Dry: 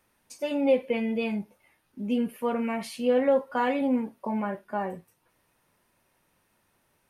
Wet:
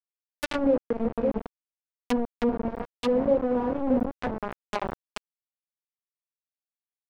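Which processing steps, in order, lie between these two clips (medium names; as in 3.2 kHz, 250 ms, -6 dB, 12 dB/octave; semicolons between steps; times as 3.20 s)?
chunks repeated in reverse 331 ms, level -3.5 dB; bit crusher 4-bit; low-pass that closes with the level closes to 600 Hz, closed at -21.5 dBFS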